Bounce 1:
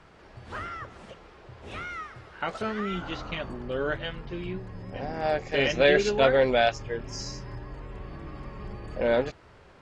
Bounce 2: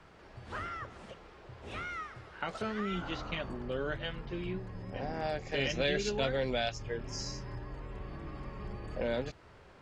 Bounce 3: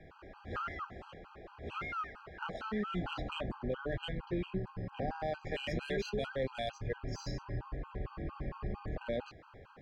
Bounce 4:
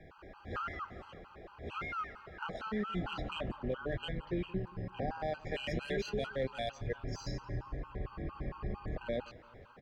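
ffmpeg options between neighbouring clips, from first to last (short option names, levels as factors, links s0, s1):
-filter_complex "[0:a]acrossover=split=220|3000[s0][s1][s2];[s1]acompressor=threshold=0.0282:ratio=3[s3];[s0][s3][s2]amix=inputs=3:normalize=0,volume=0.708"
-af "adynamicsmooth=sensitivity=3:basefreq=3400,alimiter=level_in=2:limit=0.0631:level=0:latency=1:release=24,volume=0.501,afftfilt=real='re*gt(sin(2*PI*4.4*pts/sr)*(1-2*mod(floor(b*sr/1024/810),2)),0)':imag='im*gt(sin(2*PI*4.4*pts/sr)*(1-2*mod(floor(b*sr/1024/810),2)),0)':win_size=1024:overlap=0.75,volume=1.68"
-af "aecho=1:1:173|346|519:0.075|0.0352|0.0166"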